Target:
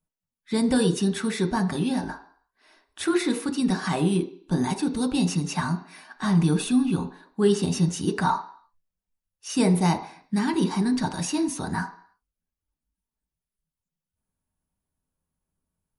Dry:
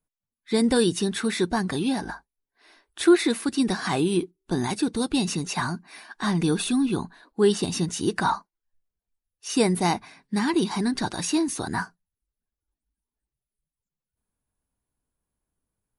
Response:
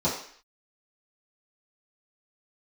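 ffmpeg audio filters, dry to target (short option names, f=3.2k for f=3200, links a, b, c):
-filter_complex "[0:a]asplit=2[a][b];[1:a]atrim=start_sample=2205,lowpass=4.7k[c];[b][c]afir=irnorm=-1:irlink=0,volume=-17dB[d];[a][d]amix=inputs=2:normalize=0,volume=-2.5dB"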